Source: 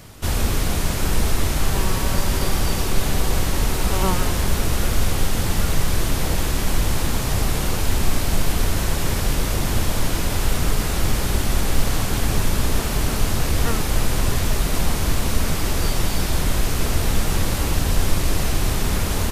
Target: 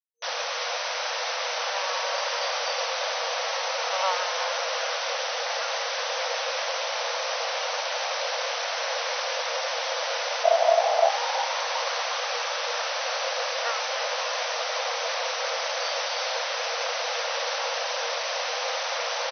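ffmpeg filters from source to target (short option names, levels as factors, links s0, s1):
-filter_complex "[0:a]asplit=3[s0][s1][s2];[s0]afade=t=out:st=10.43:d=0.02[s3];[s1]aeval=exprs='val(0)*sin(2*PI*670*n/s)':c=same,afade=t=in:st=10.43:d=0.02,afade=t=out:st=11.08:d=0.02[s4];[s2]afade=t=in:st=11.08:d=0.02[s5];[s3][s4][s5]amix=inputs=3:normalize=0,acrusher=bits=4:mix=0:aa=0.000001,asplit=2[s6][s7];[s7]asplit=7[s8][s9][s10][s11][s12][s13][s14];[s8]adelay=363,afreqshift=130,volume=0.299[s15];[s9]adelay=726,afreqshift=260,volume=0.18[s16];[s10]adelay=1089,afreqshift=390,volume=0.107[s17];[s11]adelay=1452,afreqshift=520,volume=0.0646[s18];[s12]adelay=1815,afreqshift=650,volume=0.0389[s19];[s13]adelay=2178,afreqshift=780,volume=0.0232[s20];[s14]adelay=2541,afreqshift=910,volume=0.014[s21];[s15][s16][s17][s18][s19][s20][s21]amix=inputs=7:normalize=0[s22];[s6][s22]amix=inputs=2:normalize=0,afftfilt=real='re*between(b*sr/4096,470,6200)':imag='im*between(b*sr/4096,470,6200)':win_size=4096:overlap=0.75"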